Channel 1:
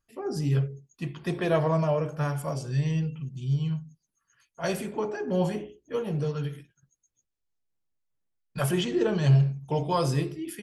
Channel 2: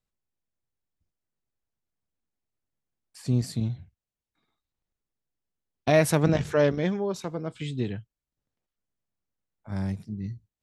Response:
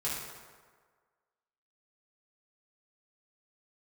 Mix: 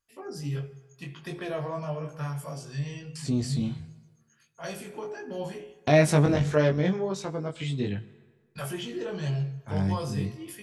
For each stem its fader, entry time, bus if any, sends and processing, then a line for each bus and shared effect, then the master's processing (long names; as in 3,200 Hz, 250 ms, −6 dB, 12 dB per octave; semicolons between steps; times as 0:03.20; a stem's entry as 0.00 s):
−6.0 dB, 0.00 s, send −20 dB, no processing
+2.5 dB, 0.00 s, send −21.5 dB, low-pass filter 10,000 Hz 24 dB per octave; noise gate with hold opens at −42 dBFS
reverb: on, RT60 1.6 s, pre-delay 3 ms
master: chorus effect 1.5 Hz, delay 19.5 ms, depth 2.3 ms; one half of a high-frequency compander encoder only